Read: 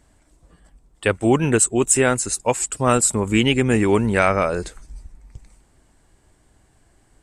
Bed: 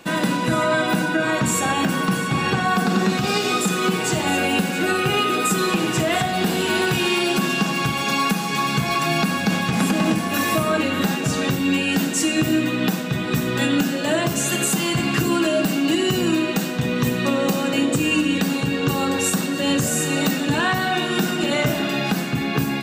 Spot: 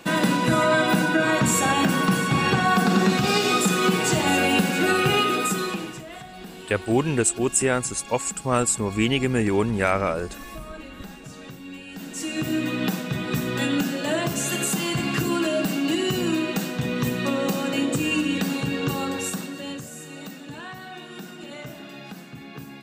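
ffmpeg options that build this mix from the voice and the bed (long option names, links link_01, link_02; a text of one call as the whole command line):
ffmpeg -i stem1.wav -i stem2.wav -filter_complex "[0:a]adelay=5650,volume=-4.5dB[link_01];[1:a]volume=15dB,afade=type=out:start_time=5.11:duration=0.9:silence=0.112202,afade=type=in:start_time=11.94:duration=0.77:silence=0.177828,afade=type=out:start_time=18.79:duration=1.08:silence=0.211349[link_02];[link_01][link_02]amix=inputs=2:normalize=0" out.wav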